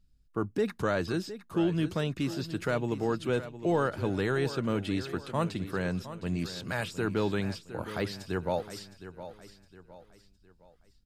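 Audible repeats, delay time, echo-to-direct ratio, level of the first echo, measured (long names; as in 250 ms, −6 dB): 3, 712 ms, −12.5 dB, −13.0 dB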